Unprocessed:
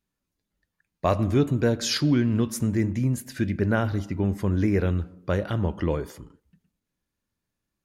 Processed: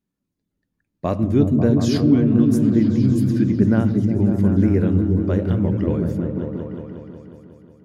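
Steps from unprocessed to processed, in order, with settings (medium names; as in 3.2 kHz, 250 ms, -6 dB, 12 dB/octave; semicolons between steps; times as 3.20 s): peaking EQ 230 Hz +12 dB 2.3 oct; on a send: delay with an opening low-pass 181 ms, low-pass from 200 Hz, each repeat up 1 oct, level 0 dB; on the sum: trim -5.5 dB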